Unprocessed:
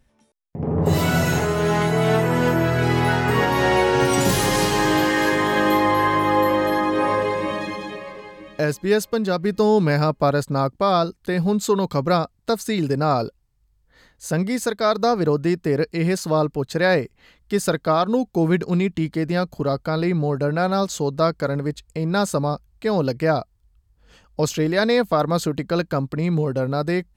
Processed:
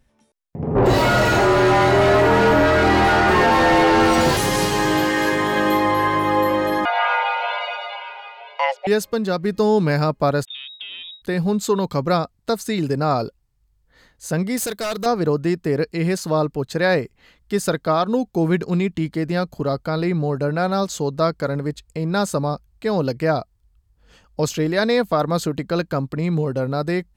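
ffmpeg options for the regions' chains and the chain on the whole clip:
ffmpeg -i in.wav -filter_complex "[0:a]asettb=1/sr,asplit=3[link_01][link_02][link_03];[link_01]atrim=end=0.754[link_04];[link_02]atrim=start=0.75:end=4.37,asetpts=PTS-STARTPTS,afade=type=in:duration=0.004:curve=qsin,afade=type=out:start_time=3.616:duration=0.004:curve=qsin,equalizer=frequency=4500:width=4.2:gain=7,afreqshift=-43,asplit=2[link_05][link_06];[link_06]highpass=frequency=720:poles=1,volume=27dB,asoftclip=type=tanh:threshold=-6dB[link_07];[link_05][link_07]amix=inputs=2:normalize=0,lowpass=frequency=1100:poles=1,volume=-6dB[link_08];[link_03]atrim=start=4.366[link_09];[link_04][link_08]acrossfade=duration=0.004:curve1=hsin:curve2=qsin[link_10];[link_10][link_09]acrossfade=duration=0.004:curve1=qsin:curve2=hsin,asettb=1/sr,asplit=3[link_11][link_12][link_13];[link_11]atrim=end=6.854[link_14];[link_12]atrim=start=6.85:end=8.87,asetpts=PTS-STARTPTS,afade=type=in:duration=0.004:curve=qsin,afade=type=out:start_time=2.016:duration=0.004:curve=qsin,lowpass=frequency=2700:width_type=q:width=1.9,afreqshift=390[link_15];[link_13]atrim=start=8.866[link_16];[link_14][link_15]acrossfade=duration=0.004:curve1=hsin:curve2=qsin[link_17];[link_17][link_16]acrossfade=duration=0.004:curve1=qsin:curve2=hsin,asettb=1/sr,asplit=3[link_18][link_19][link_20];[link_18]atrim=end=10.454[link_21];[link_19]atrim=start=10.45:end=11.22,asetpts=PTS-STARTPTS,afade=type=in:duration=0.004:curve=qsin,afade=type=out:start_time=0.766:duration=0.004:curve=qsin,aeval=exprs='if(lt(val(0),0),0.447*val(0),val(0))':channel_layout=same,lowpass=frequency=3200:width_type=q:width=0.5098,lowpass=frequency=3200:width_type=q:width=0.6013,lowpass=frequency=3200:width_type=q:width=0.9,lowpass=frequency=3200:width_type=q:width=2.563,afreqshift=-3800,acompressor=threshold=-30dB:ratio=12:attack=3.2:release=140:knee=1:detection=peak[link_22];[link_20]atrim=start=11.216[link_23];[link_21][link_22]acrossfade=duration=0.004:curve1=hsin:curve2=qsin[link_24];[link_24][link_23]acrossfade=duration=0.004:curve1=qsin:curve2=hsin,asettb=1/sr,asplit=3[link_25][link_26][link_27];[link_25]atrim=end=14.574[link_28];[link_26]atrim=start=14.57:end=15.06,asetpts=PTS-STARTPTS,afade=type=in:duration=0.004:curve=qsin,afade=type=out:start_time=0.486:duration=0.004:curve=qsin,aemphasis=mode=production:type=50kf,volume=21.5dB,asoftclip=hard,volume=-21.5dB[link_29];[link_27]atrim=start=15.056[link_30];[link_28][link_29]acrossfade=duration=0.004:curve1=hsin:curve2=qsin[link_31];[link_31][link_30]acrossfade=duration=0.004:curve1=qsin:curve2=hsin" out.wav

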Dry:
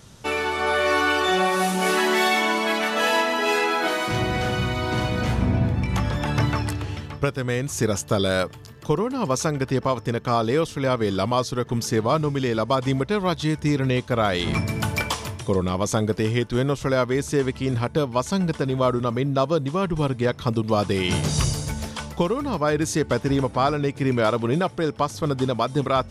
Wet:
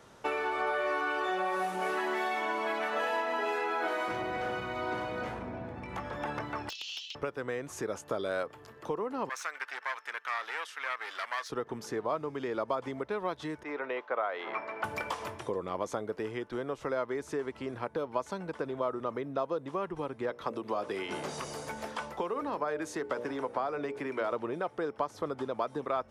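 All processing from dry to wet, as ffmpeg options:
ffmpeg -i in.wav -filter_complex "[0:a]asettb=1/sr,asplit=3[link_01][link_02][link_03];[link_01]atrim=end=6.694[link_04];[link_02]atrim=start=6.69:end=7.15,asetpts=PTS-STARTPTS,afade=type=in:duration=0.004:curve=qsin,afade=type=out:start_time=0.456:duration=0.004:curve=qsin,asuperpass=centerf=4500:order=12:qfactor=1.1,aeval=exprs='0.126*sin(PI/2*6.31*val(0)/0.126)':channel_layout=same[link_05];[link_03]atrim=start=7.146[link_06];[link_04][link_05]acrossfade=duration=0.004:curve1=hsin:curve2=qsin[link_07];[link_07][link_06]acrossfade=duration=0.004:curve1=qsin:curve2=hsin,asettb=1/sr,asplit=3[link_08][link_09][link_10];[link_08]atrim=end=9.294[link_11];[link_09]atrim=start=9.29:end=11.5,asetpts=PTS-STARTPTS,afade=type=in:duration=0.004:curve=qsin,afade=type=out:start_time=2.206:duration=0.004:curve=qsin,aeval=exprs='clip(val(0),-1,0.0531)':channel_layout=same,highpass=frequency=1700:width_type=q:width=1.5[link_12];[link_10]atrim=start=11.496[link_13];[link_11][link_12]acrossfade=duration=0.004:curve1=hsin:curve2=qsin[link_14];[link_14][link_13]acrossfade=duration=0.004:curve1=qsin:curve2=hsin,asettb=1/sr,asplit=3[link_15][link_16][link_17];[link_15]atrim=end=13.634[link_18];[link_16]atrim=start=13.63:end=14.84,asetpts=PTS-STARTPTS,afade=type=in:duration=0.004:curve=qsin,afade=type=out:start_time=1.206:duration=0.004:curve=qsin,highpass=620,lowpass=2200,bandreject=frequency=1700:width=24[link_19];[link_17]atrim=start=14.836[link_20];[link_18][link_19]acrossfade=duration=0.004:curve1=hsin:curve2=qsin[link_21];[link_21][link_20]acrossfade=duration=0.004:curve1=qsin:curve2=hsin,asettb=1/sr,asplit=3[link_22][link_23][link_24];[link_22]atrim=end=20.304[link_25];[link_23]atrim=start=20.3:end=24.32,asetpts=PTS-STARTPTS,afade=type=in:duration=0.004:curve=qsin,afade=type=out:start_time=4.016:duration=0.004:curve=qsin,bandreject=frequency=60:width_type=h:width=6,bandreject=frequency=120:width_type=h:width=6,bandreject=frequency=180:width_type=h:width=6,bandreject=frequency=240:width_type=h:width=6,bandreject=frequency=300:width_type=h:width=6,bandreject=frequency=360:width_type=h:width=6,bandreject=frequency=420:width_type=h:width=6,bandreject=frequency=480:width_type=h:width=6,bandreject=frequency=540:width_type=h:width=6,bandreject=frequency=600:width_type=h:width=6,acrossover=split=170|720[link_26][link_27][link_28];[link_26]acompressor=threshold=-40dB:ratio=4[link_29];[link_27]acompressor=threshold=-25dB:ratio=4[link_30];[link_28]acompressor=threshold=-26dB:ratio=4[link_31];[link_29][link_30][link_31]amix=inputs=3:normalize=0[link_32];[link_24]atrim=start=24.316[link_33];[link_25][link_32]acrossfade=duration=0.004:curve1=hsin:curve2=qsin[link_34];[link_34][link_33]acrossfade=duration=0.004:curve1=qsin:curve2=hsin,acompressor=threshold=-27dB:ratio=6,acrossover=split=310 2100:gain=0.141 1 0.224[link_35][link_36][link_37];[link_35][link_36][link_37]amix=inputs=3:normalize=0" out.wav

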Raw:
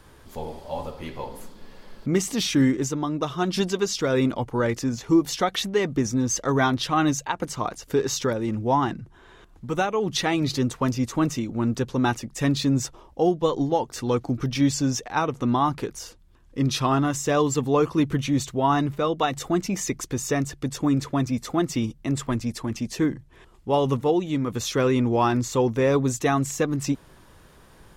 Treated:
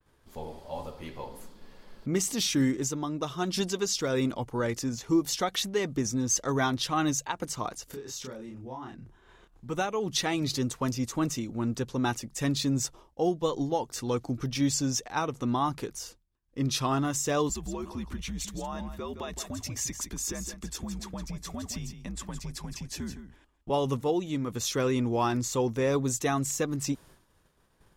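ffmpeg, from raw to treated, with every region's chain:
ffmpeg -i in.wav -filter_complex "[0:a]asettb=1/sr,asplit=3[link_01][link_02][link_03];[link_01]atrim=end=7.874[link_04];[link_02]atrim=start=7.87:end=9.66,asetpts=PTS-STARTPTS,afade=type=in:duration=0.004:curve=qsin,afade=type=out:start_time=1.786:duration=0.004:curve=qsin,acompressor=threshold=-38dB:ratio=3:attack=3.2:release=140:knee=1:detection=peak,asplit=2[link_05][link_06];[link_06]adelay=31,volume=-2dB[link_07];[link_05][link_07]amix=inputs=2:normalize=0,atrim=end_sample=78939[link_08];[link_03]atrim=start=9.656[link_09];[link_04][link_08]acrossfade=duration=0.004:curve1=hsin:curve2=qsin[link_10];[link_10][link_09]acrossfade=duration=0.004:curve1=qsin:curve2=hsin,asettb=1/sr,asplit=3[link_11][link_12][link_13];[link_11]atrim=end=17.494[link_14];[link_12]atrim=start=17.49:end=23.7,asetpts=PTS-STARTPTS,afade=type=in:duration=0.004:curve=qsin,afade=type=out:start_time=6.206:duration=0.004:curve=qsin,acompressor=threshold=-27dB:ratio=5:attack=3.2:release=140:knee=1:detection=peak,afreqshift=-82,aecho=1:1:165:0.316,atrim=end_sample=273861[link_15];[link_13]atrim=start=23.696[link_16];[link_14][link_15]acrossfade=duration=0.004:curve1=hsin:curve2=qsin[link_17];[link_17][link_16]acrossfade=duration=0.004:curve1=qsin:curve2=hsin,agate=range=-33dB:threshold=-43dB:ratio=3:detection=peak,adynamicequalizer=threshold=0.00794:dfrequency=4000:dqfactor=0.7:tfrequency=4000:tqfactor=0.7:attack=5:release=100:ratio=0.375:range=3.5:mode=boostabove:tftype=highshelf,volume=-6dB" out.wav

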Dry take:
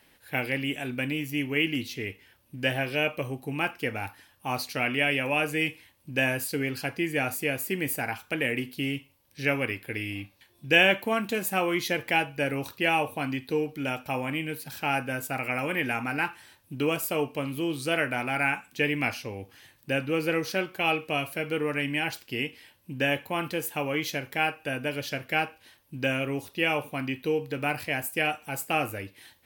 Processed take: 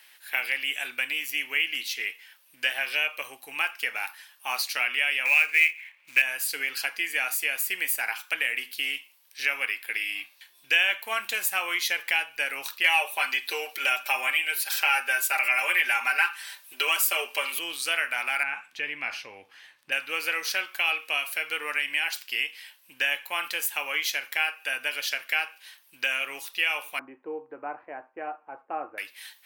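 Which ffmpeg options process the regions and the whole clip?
ffmpeg -i in.wav -filter_complex "[0:a]asettb=1/sr,asplit=3[link_01][link_02][link_03];[link_01]atrim=end=5.254[link_04];[link_02]atrim=start=5.25:end=6.22,asetpts=PTS-STARTPTS,afade=type=in:duration=0.004:curve=qsin,afade=type=out:start_time=0.966:duration=0.004:curve=qsin,lowpass=frequency=2300:width_type=q:width=5.8,acrusher=bits=5:mode=log:mix=0:aa=0.000001[link_05];[link_03]atrim=start=6.216[link_06];[link_04][link_05]acrossfade=duration=0.004:curve1=hsin:curve2=qsin[link_07];[link_07][link_06]acrossfade=duration=0.004:curve1=qsin:curve2=hsin,asettb=1/sr,asplit=3[link_08][link_09][link_10];[link_08]atrim=end=12.844[link_11];[link_09]atrim=start=12.84:end=17.59,asetpts=PTS-STARTPTS,afade=type=in:duration=0.004:curve=qsin,afade=type=out:start_time=4.746:duration=0.004:curve=qsin,aecho=1:1:5.1:0.85,atrim=end_sample=209475,acontrast=22,highpass=frequency=270:width=0.5412,highpass=frequency=270:width=1.3066[link_12];[link_10]atrim=start=17.586[link_13];[link_11][link_12]acrossfade=duration=0.004:curve1=hsin:curve2=qsin[link_14];[link_14][link_13]acrossfade=duration=0.004:curve1=qsin:curve2=hsin,asettb=1/sr,asplit=3[link_15][link_16][link_17];[link_15]atrim=end=18.434[link_18];[link_16]atrim=start=18.43:end=19.92,asetpts=PTS-STARTPTS,afade=type=in:duration=0.004:curve=qsin,afade=type=out:start_time=1.486:duration=0.004:curve=qsin,aemphasis=mode=reproduction:type=riaa,acompressor=threshold=-27dB:ratio=2.5:attack=3.2:release=140:knee=1:detection=peak[link_19];[link_17]atrim=start=19.916[link_20];[link_18][link_19]acrossfade=duration=0.004:curve1=hsin:curve2=qsin[link_21];[link_21][link_20]acrossfade=duration=0.004:curve1=qsin:curve2=hsin,asettb=1/sr,asplit=3[link_22][link_23][link_24];[link_22]atrim=end=26.994[link_25];[link_23]atrim=start=26.99:end=28.98,asetpts=PTS-STARTPTS,afade=type=in:duration=0.004:curve=qsin,afade=type=out:start_time=1.986:duration=0.004:curve=qsin,lowpass=frequency=1000:width=0.5412,lowpass=frequency=1000:width=1.3066,equalizer=frequency=330:width=2.1:gain=8.5[link_26];[link_24]atrim=start=28.976[link_27];[link_25][link_26]acrossfade=duration=0.004:curve1=hsin:curve2=qsin[link_28];[link_28][link_27]acrossfade=duration=0.004:curve1=qsin:curve2=hsin,highpass=1400,acompressor=threshold=-33dB:ratio=2,volume=8dB" out.wav

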